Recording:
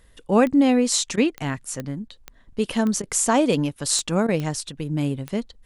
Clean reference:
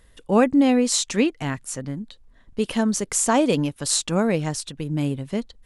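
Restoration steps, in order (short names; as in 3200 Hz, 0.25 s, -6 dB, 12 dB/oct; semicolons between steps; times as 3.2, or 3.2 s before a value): de-click; interpolate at 1.16/2.08/3.02/4.27, 13 ms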